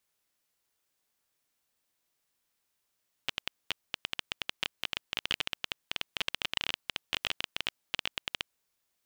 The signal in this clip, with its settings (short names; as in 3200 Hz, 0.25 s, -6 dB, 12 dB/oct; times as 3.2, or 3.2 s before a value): random clicks 16/s -12.5 dBFS 5.26 s